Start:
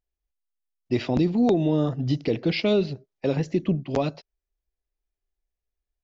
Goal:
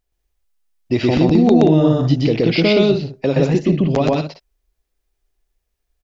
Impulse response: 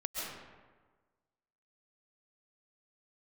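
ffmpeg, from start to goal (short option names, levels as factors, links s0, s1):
-filter_complex "[0:a]asplit=2[s0][s1];[s1]acompressor=threshold=0.0251:ratio=6,volume=1[s2];[s0][s2]amix=inputs=2:normalize=0,aecho=1:1:122.4|180.8:1|0.398,volume=1.58"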